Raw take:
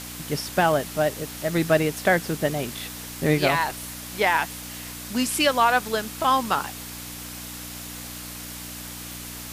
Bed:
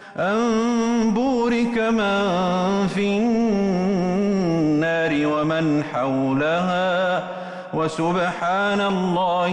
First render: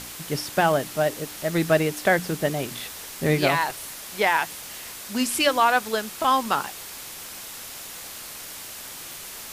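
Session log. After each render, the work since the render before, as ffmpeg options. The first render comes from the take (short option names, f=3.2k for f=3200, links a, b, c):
-af "bandreject=f=60:t=h:w=4,bandreject=f=120:t=h:w=4,bandreject=f=180:t=h:w=4,bandreject=f=240:t=h:w=4,bandreject=f=300:t=h:w=4"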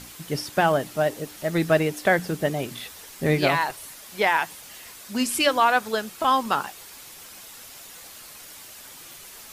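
-af "afftdn=nr=7:nf=-39"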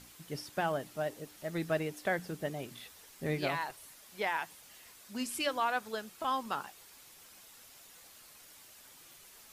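-af "volume=-12.5dB"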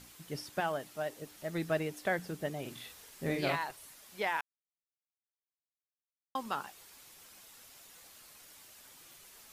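-filter_complex "[0:a]asettb=1/sr,asplit=3[a][b][c];[a]atrim=end=0.604[d];[b]atrim=start=0.6:end=1.22,asetpts=PTS-STARTPTS,afade=t=in:d=0.004:c=qsin,afade=t=out:st=0.616:d=0.004:c=qsin,lowshelf=f=380:g=-6[e];[c]atrim=start=1.216[f];[d][e]acrossfade=d=0.004:c1=hsin:c2=qsin[g];[g][f]acrossfade=d=0.004:c1=qsin:c2=hsin,asettb=1/sr,asplit=3[h][i][j];[h]atrim=end=2.614[k];[i]atrim=start=2.61:end=3.56,asetpts=PTS-STARTPTS,afade=t=in:d=0.004:c=qsin,afade=t=out:st=0.946:d=0.004:c=qsin,asplit=2[l][m];[m]adelay=43,volume=-4dB[n];[l][n]amix=inputs=2:normalize=0,atrim=end_sample=41895[o];[j]atrim=start=3.556[p];[k][o]acrossfade=d=0.004:c1=hsin:c2=qsin[q];[q][p]acrossfade=d=0.004:c1=qsin:c2=hsin,asplit=3[r][s][t];[r]atrim=end=4.41,asetpts=PTS-STARTPTS,afade=t=out:st=4.406:d=0.004:c=hsin[u];[s]atrim=start=4.41:end=6.35,asetpts=PTS-STARTPTS,volume=0[v];[t]atrim=start=6.35,asetpts=PTS-STARTPTS,afade=t=in:d=0.004:c=hsin[w];[u][v][w]concat=n=3:v=0:a=1"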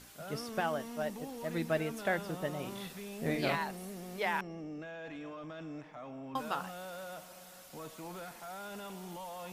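-filter_complex "[1:a]volume=-24.5dB[a];[0:a][a]amix=inputs=2:normalize=0"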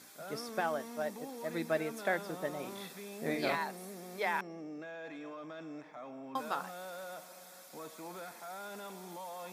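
-af "highpass=230,bandreject=f=2.9k:w=6.1"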